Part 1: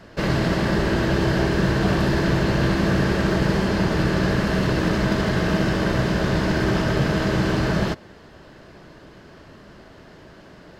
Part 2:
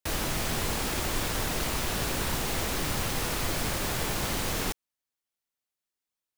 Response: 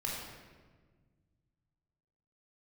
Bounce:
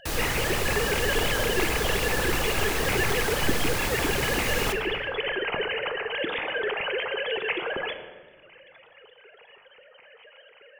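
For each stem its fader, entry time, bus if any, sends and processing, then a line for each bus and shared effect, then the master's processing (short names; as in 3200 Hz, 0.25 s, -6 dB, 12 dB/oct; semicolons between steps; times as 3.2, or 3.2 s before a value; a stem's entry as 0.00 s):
+1.0 dB, 0.00 s, send -7.5 dB, sine-wave speech; reverb removal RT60 1.3 s; band shelf 640 Hz -13 dB 3 oct
-1.5 dB, 0.00 s, send -8 dB, dry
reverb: on, RT60 1.5 s, pre-delay 18 ms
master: dry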